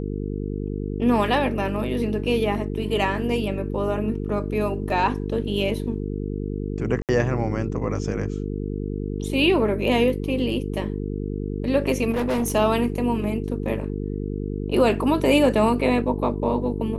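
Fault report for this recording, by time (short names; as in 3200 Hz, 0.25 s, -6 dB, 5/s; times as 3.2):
buzz 50 Hz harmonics 9 -28 dBFS
4.9 gap 2.7 ms
7.02–7.09 gap 68 ms
12.1–12.55 clipped -19.5 dBFS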